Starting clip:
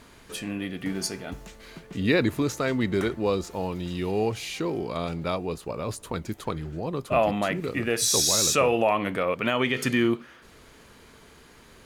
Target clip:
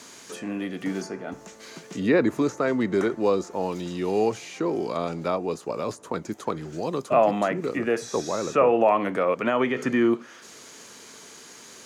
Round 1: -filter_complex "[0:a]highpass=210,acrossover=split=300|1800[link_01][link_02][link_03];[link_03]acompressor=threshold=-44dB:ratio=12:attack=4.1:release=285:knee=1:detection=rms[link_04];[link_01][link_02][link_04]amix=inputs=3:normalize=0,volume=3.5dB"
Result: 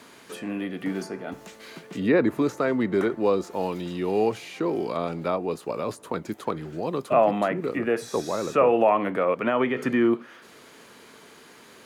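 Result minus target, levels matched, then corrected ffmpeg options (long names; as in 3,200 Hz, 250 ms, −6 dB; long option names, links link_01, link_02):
8,000 Hz band −4.5 dB
-filter_complex "[0:a]highpass=210,equalizer=frequency=6400:width_type=o:width=0.97:gain=14,acrossover=split=300|1800[link_01][link_02][link_03];[link_03]acompressor=threshold=-44dB:ratio=12:attack=4.1:release=285:knee=1:detection=rms[link_04];[link_01][link_02][link_04]amix=inputs=3:normalize=0,volume=3.5dB"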